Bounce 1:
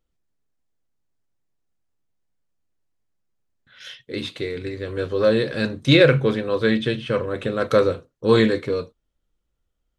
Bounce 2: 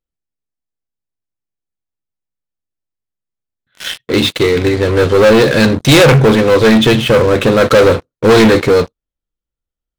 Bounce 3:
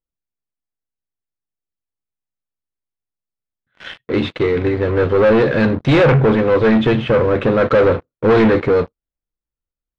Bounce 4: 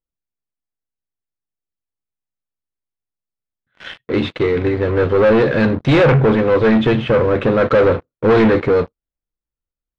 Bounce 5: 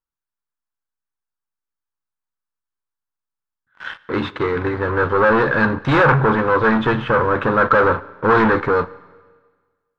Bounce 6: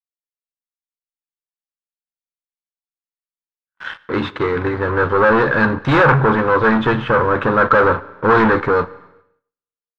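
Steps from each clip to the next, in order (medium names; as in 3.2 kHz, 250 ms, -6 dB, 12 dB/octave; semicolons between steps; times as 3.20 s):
waveshaping leveller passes 5
low-pass 2.1 kHz 12 dB/octave; trim -4.5 dB
no audible change
high-order bell 1.2 kHz +11 dB 1.2 oct; Schroeder reverb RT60 1.5 s, combs from 30 ms, DRR 19 dB; trim -4.5 dB
expander -42 dBFS; trim +1.5 dB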